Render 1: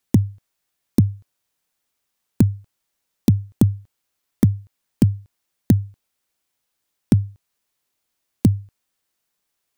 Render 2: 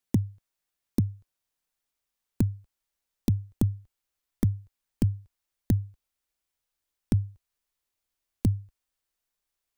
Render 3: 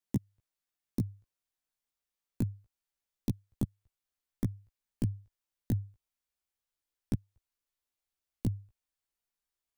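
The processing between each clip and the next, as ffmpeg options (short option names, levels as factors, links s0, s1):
-af "asubboost=boost=5:cutoff=65,volume=0.376"
-af "flanger=delay=15:depth=2.4:speed=0.27,volume=0.668"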